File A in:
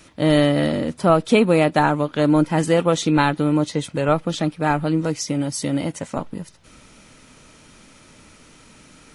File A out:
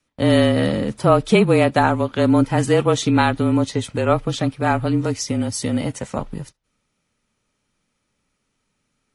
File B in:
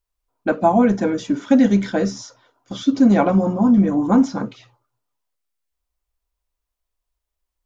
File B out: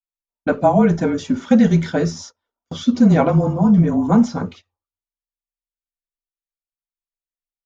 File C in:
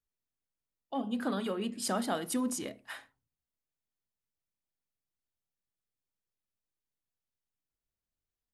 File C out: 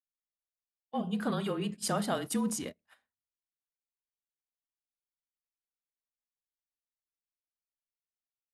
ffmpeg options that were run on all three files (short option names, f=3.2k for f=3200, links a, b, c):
-af "afreqshift=-31,agate=range=-25dB:threshold=-38dB:ratio=16:detection=peak,volume=1dB"